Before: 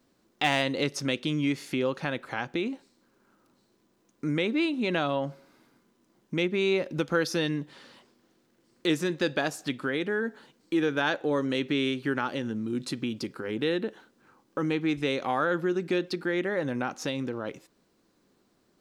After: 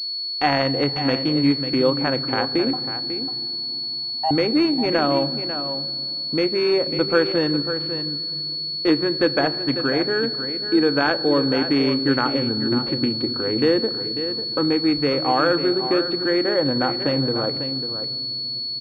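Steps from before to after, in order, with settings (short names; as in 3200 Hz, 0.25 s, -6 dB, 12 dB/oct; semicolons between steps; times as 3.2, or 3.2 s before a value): Wiener smoothing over 15 samples; bell 190 Hz -11 dB 0.38 oct; 2.73–4.31 frequency shift +490 Hz; in parallel at +1 dB: vocal rider 2 s; on the sum: echo 0.546 s -10 dB; on a send at -13 dB: reverb RT60 3.5 s, pre-delay 3 ms; on the sum: pulse-width modulation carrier 4400 Hz; gain +2 dB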